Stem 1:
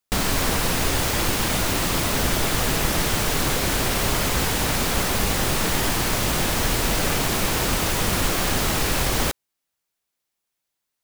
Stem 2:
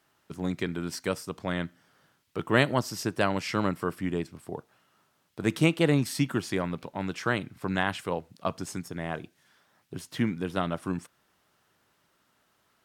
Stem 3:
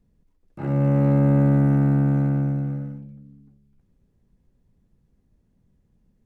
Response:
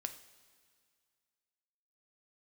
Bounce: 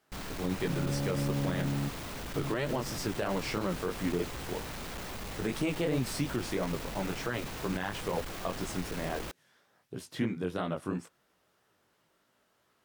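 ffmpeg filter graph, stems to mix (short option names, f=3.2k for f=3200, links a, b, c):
-filter_complex "[0:a]equalizer=f=12k:t=o:w=1.9:g=-6,asoftclip=type=tanh:threshold=-23dB,volume=-13dB[a];[1:a]equalizer=f=480:w=1.4:g=5,flanger=delay=15.5:depth=7.1:speed=3,volume=-0.5dB,asplit=2[b][c];[2:a]volume=-14dB[d];[c]apad=whole_len=275906[e];[d][e]sidechaingate=range=-33dB:threshold=-60dB:ratio=16:detection=peak[f];[a][b][f]amix=inputs=3:normalize=0,alimiter=limit=-21dB:level=0:latency=1:release=61"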